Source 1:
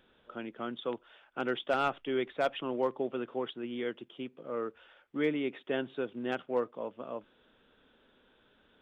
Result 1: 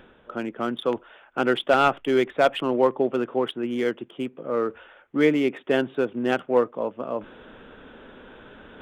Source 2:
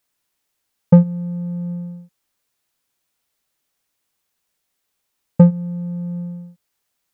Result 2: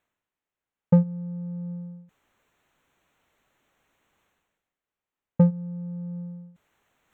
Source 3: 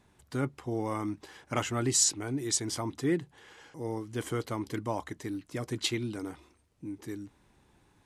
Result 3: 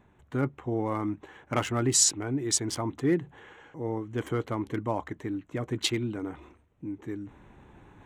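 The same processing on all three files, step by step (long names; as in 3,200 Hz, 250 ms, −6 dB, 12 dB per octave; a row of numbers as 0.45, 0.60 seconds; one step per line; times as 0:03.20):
adaptive Wiener filter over 9 samples
reversed playback
upward compression, threshold −46 dBFS
reversed playback
normalise the peak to −9 dBFS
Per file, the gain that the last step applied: +11.0, −8.0, +3.5 decibels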